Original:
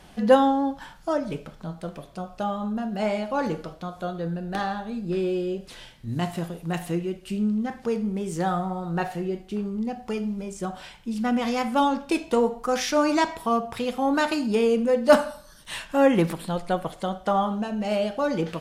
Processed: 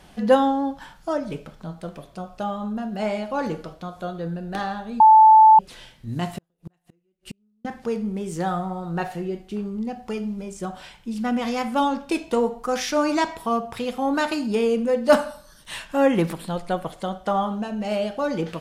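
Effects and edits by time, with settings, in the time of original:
5.00–5.59 s: bleep 875 Hz -7.5 dBFS
6.38–7.65 s: inverted gate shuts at -25 dBFS, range -42 dB

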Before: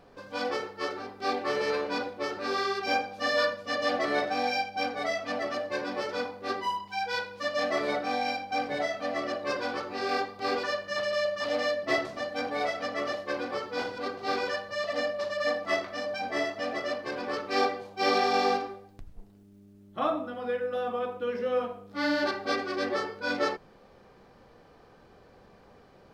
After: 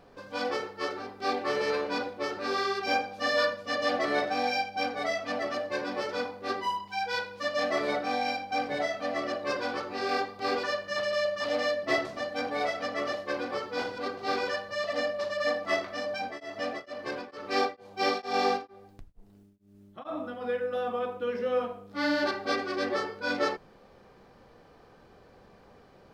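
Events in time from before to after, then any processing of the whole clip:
16.18–20.41 s: tremolo of two beating tones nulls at 2.2 Hz

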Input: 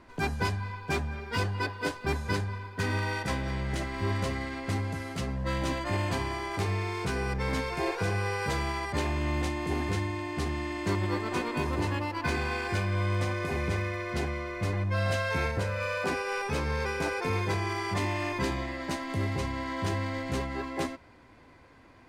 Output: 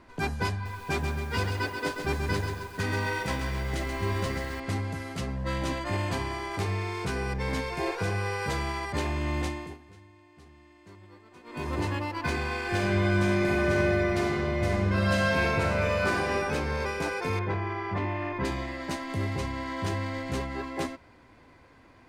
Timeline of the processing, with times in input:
0.52–4.60 s: bit-crushed delay 134 ms, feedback 55%, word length 8-bit, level -5.5 dB
7.23–7.85 s: band-stop 1.3 kHz, Q 9.9
9.46–11.75 s: dip -22 dB, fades 0.32 s
12.61–16.19 s: reverb throw, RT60 2.5 s, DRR -3 dB
17.39–18.45 s: low-pass 2.1 kHz

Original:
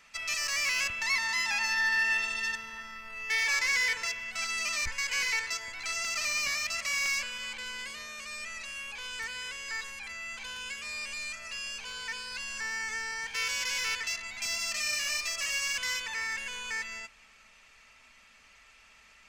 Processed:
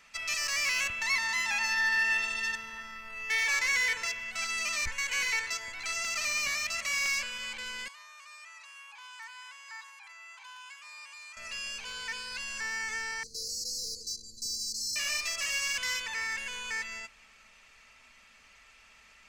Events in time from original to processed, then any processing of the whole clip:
0.78–6.92 s: band-stop 5 kHz
7.88–11.37 s: ladder high-pass 850 Hz, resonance 65%
13.23–14.96 s: brick-wall FIR band-stop 510–4000 Hz

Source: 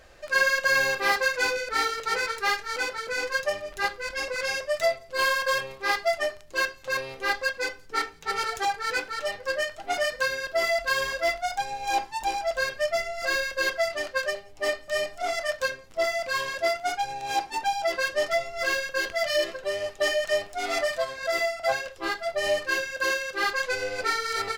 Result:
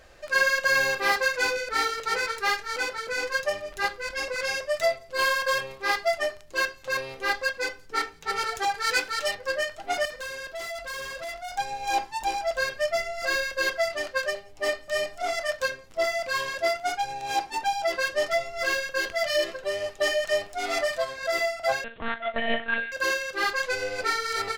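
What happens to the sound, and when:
8.75–9.35 s: treble shelf 2.2 kHz +8 dB
10.05–11.54 s: valve stage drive 33 dB, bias 0.4
21.84–22.92 s: monotone LPC vocoder at 8 kHz 230 Hz

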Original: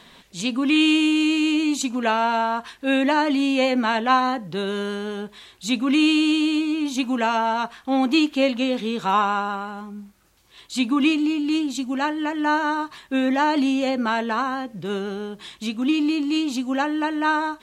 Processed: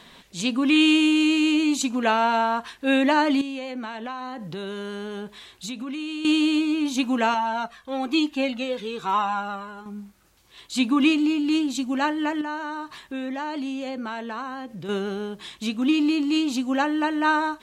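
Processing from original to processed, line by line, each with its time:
3.41–6.25 s: compression 10:1, threshold -29 dBFS
7.34–9.86 s: Shepard-style flanger falling 1.1 Hz
12.41–14.89 s: compression 2:1, threshold -35 dBFS

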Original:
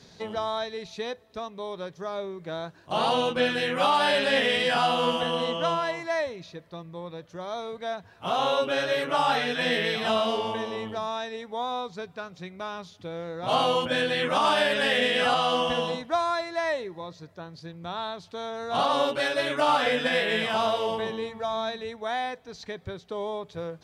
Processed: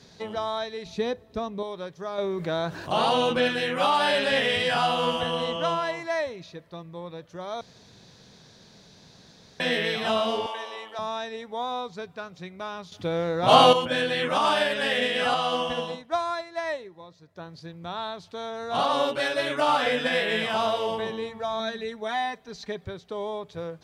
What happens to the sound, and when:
0.86–1.63 s: bass shelf 460 Hz +11.5 dB
2.18–3.48 s: level flattener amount 50%
4.32–5.56 s: resonant low shelf 150 Hz +8.5 dB, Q 1.5
7.61–9.60 s: room tone
10.46–10.99 s: high-pass 700 Hz
12.92–13.73 s: gain +8.5 dB
14.58–17.36 s: upward expansion, over -39 dBFS
21.59–22.85 s: comb 5 ms

